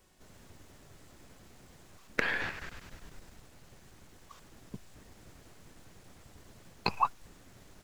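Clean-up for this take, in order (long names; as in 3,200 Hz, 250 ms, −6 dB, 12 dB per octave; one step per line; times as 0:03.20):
clipped peaks rebuilt −11.5 dBFS
hum removal 368.9 Hz, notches 34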